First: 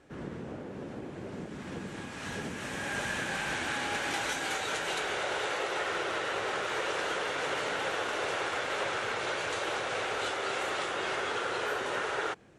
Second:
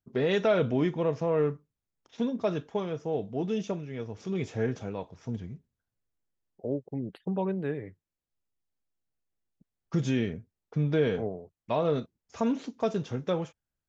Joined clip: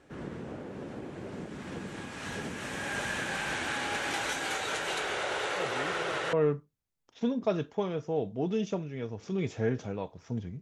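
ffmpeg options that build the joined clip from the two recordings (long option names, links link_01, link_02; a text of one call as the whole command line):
ffmpeg -i cue0.wav -i cue1.wav -filter_complex "[1:a]asplit=2[link_01][link_02];[0:a]apad=whole_dur=10.61,atrim=end=10.61,atrim=end=6.332[link_03];[link_02]atrim=start=1.298:end=5.58[link_04];[link_01]atrim=start=0.53:end=1.3,asetpts=PTS-STARTPTS,volume=-16dB,afade=type=in:duration=0.004:curve=hsin,afade=type=out:start_time=0.766:duration=0.004:curve=hsin,adelay=5560[link_05];[link_03][link_04]acrossfade=duration=0.004:curve1=hsin:curve2=hsin[link_06];[link_06][link_05]amix=inputs=2:normalize=0" out.wav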